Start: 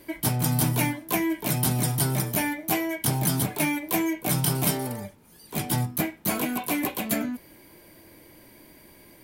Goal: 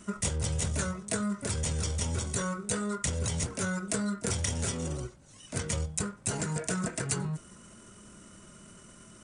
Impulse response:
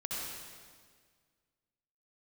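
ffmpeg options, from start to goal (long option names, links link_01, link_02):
-af "acompressor=threshold=-28dB:ratio=4,asetrate=27781,aresample=44100,atempo=1.5874"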